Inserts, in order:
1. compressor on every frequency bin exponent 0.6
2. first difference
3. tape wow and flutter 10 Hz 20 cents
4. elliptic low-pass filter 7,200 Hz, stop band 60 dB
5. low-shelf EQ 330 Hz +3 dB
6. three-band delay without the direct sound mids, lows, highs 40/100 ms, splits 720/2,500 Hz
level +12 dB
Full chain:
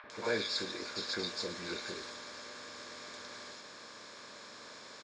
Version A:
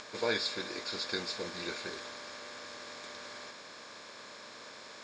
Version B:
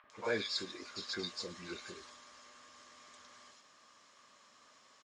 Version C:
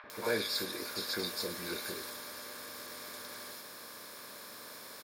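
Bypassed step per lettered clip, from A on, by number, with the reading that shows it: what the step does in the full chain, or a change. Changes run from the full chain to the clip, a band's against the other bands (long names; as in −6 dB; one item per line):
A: 6, echo-to-direct ratio −3.5 dB to none audible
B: 1, change in momentary loudness spread +6 LU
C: 4, change in momentary loudness spread −2 LU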